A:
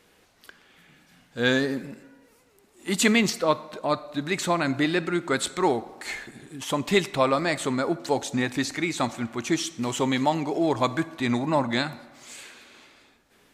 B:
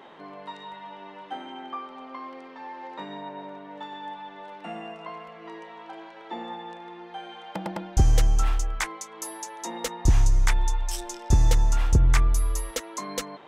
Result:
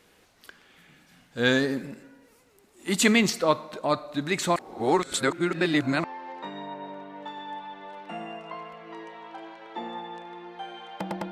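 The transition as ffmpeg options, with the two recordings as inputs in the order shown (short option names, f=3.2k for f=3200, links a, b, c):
-filter_complex "[0:a]apad=whole_dur=11.31,atrim=end=11.31,asplit=2[a][b];[a]atrim=end=4.562[c];[b]atrim=start=4.558:end=6.042,asetpts=PTS-STARTPTS,areverse[d];[1:a]atrim=start=2.588:end=7.86[e];[c][d]acrossfade=d=0.004:c1=hsin:c2=hsin[f];[f][e]acrossfade=d=0.004:c1=hsin:c2=hsin"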